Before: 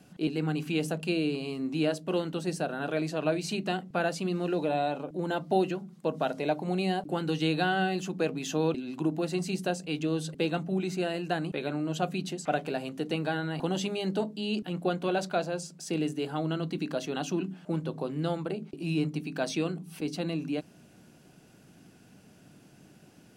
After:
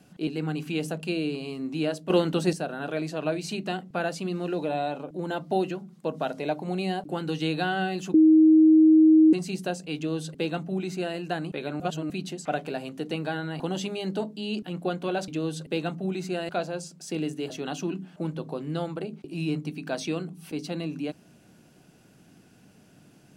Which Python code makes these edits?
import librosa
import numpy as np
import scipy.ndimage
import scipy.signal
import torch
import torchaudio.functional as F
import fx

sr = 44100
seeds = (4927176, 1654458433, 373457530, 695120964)

y = fx.edit(x, sr, fx.clip_gain(start_s=2.1, length_s=0.43, db=7.5),
    fx.bleep(start_s=8.14, length_s=1.19, hz=315.0, db=-12.5),
    fx.duplicate(start_s=9.96, length_s=1.21, to_s=15.28),
    fx.reverse_span(start_s=11.8, length_s=0.3),
    fx.cut(start_s=16.29, length_s=0.7), tone=tone)